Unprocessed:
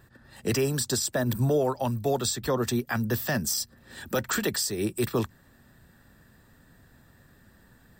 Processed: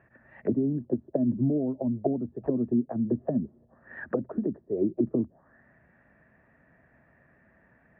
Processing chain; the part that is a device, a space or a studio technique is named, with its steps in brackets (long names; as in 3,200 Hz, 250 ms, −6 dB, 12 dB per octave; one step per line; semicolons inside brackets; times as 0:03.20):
envelope filter bass rig (envelope-controlled low-pass 270–2,500 Hz down, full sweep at −23.5 dBFS; loudspeaker in its box 67–2,000 Hz, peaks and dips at 100 Hz −7 dB, 640 Hz +10 dB, 1,400 Hz −3 dB)
level −5 dB